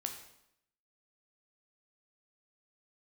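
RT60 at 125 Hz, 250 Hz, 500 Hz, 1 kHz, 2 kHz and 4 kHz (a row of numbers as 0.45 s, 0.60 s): 0.85 s, 0.85 s, 0.75 s, 0.75 s, 0.70 s, 0.70 s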